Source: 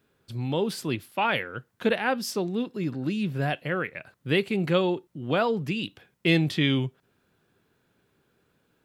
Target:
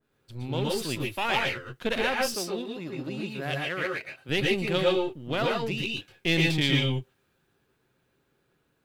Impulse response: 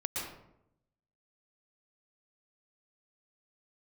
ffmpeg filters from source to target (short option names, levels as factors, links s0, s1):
-filter_complex "[0:a]aeval=exprs='if(lt(val(0),0),0.447*val(0),val(0))':c=same,asettb=1/sr,asplit=3[s0][s1][s2];[s0]atrim=end=2.214[s3];[s1]atrim=start=2.21:end=4.29,asetpts=PTS-STARTPTS,afade=t=in:d=0.004:c=qsin,afade=t=out:st=2.076:d=0.004:c=qsin,highpass=f=260:p=1[s4];[s2]atrim=start=4.286[s5];[s3][s4]acrossfade=d=0.004:c1=hsin:c2=qsin[s6];[s6][s5]acrossfade=d=0.004:c1=qsin:c2=hsin[s7];[1:a]atrim=start_sample=2205,atrim=end_sample=6615[s8];[s7][s8]afir=irnorm=-1:irlink=0,adynamicequalizer=threshold=0.01:dfrequency=2000:dqfactor=0.7:tfrequency=2000:tqfactor=0.7:attack=5:release=100:ratio=0.375:range=3:mode=boostabove:tftype=highshelf,volume=0.794"